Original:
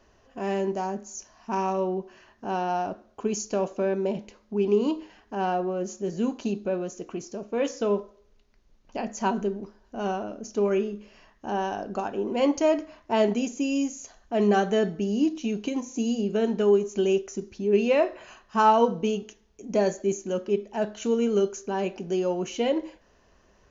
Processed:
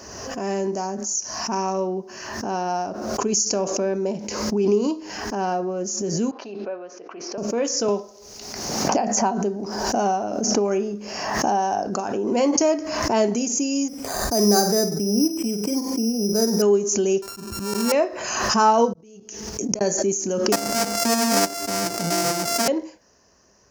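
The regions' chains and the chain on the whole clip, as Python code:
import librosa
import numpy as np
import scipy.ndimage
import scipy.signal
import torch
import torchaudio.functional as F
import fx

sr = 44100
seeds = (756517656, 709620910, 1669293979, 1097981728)

y = fx.chain(x, sr, fx.bandpass_edges(low_hz=600.0, high_hz=3600.0),
    fx.air_absorb(metres=240.0), at=(6.31, 7.38))
y = fx.chain(y, sr, fx.peak_eq(hz=760.0, db=8.5, octaves=0.45),
    fx.band_squash(depth_pct=100), at=(7.88, 11.87))
y = fx.chain(y, sr, fx.peak_eq(hz=3800.0, db=-5.0, octaves=2.5),
    fx.room_flutter(wall_m=8.4, rt60_s=0.32),
    fx.resample_bad(factor=8, down='filtered', up='hold'), at=(13.88, 16.62))
y = fx.chain(y, sr, fx.sample_sort(block=32),
    fx.low_shelf(hz=260.0, db=11.5),
    fx.auto_swell(attack_ms=379.0), at=(17.22, 17.92))
y = fx.chain(y, sr, fx.gate_flip(shuts_db=-27.0, range_db=-39),
    fx.level_steps(step_db=18), at=(18.93, 19.81))
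y = fx.chain(y, sr, fx.sample_sort(block=64),
    fx.doppler_dist(depth_ms=0.31), at=(20.52, 22.68))
y = scipy.signal.sosfilt(scipy.signal.butter(2, 84.0, 'highpass', fs=sr, output='sos'), y)
y = fx.high_shelf_res(y, sr, hz=4300.0, db=6.5, q=3.0)
y = fx.pre_swell(y, sr, db_per_s=37.0)
y = y * librosa.db_to_amplitude(2.0)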